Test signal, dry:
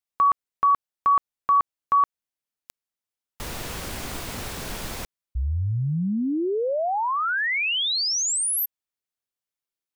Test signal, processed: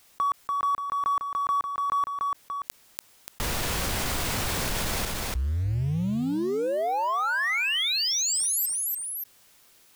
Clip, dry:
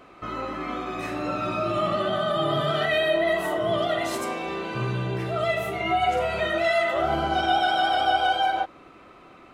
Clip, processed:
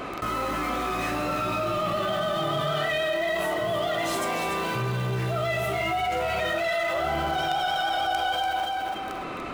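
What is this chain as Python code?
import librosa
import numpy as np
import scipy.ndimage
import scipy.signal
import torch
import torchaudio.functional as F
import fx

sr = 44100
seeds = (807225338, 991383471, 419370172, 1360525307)

p1 = fx.dynamic_eq(x, sr, hz=310.0, q=0.82, threshold_db=-41.0, ratio=2.5, max_db=-4)
p2 = fx.quant_companded(p1, sr, bits=2)
p3 = p1 + (p2 * 10.0 ** (-11.0 / 20.0))
p4 = fx.echo_feedback(p3, sr, ms=290, feedback_pct=16, wet_db=-9)
p5 = fx.env_flatten(p4, sr, amount_pct=70)
y = p5 * 10.0 ** (-7.5 / 20.0)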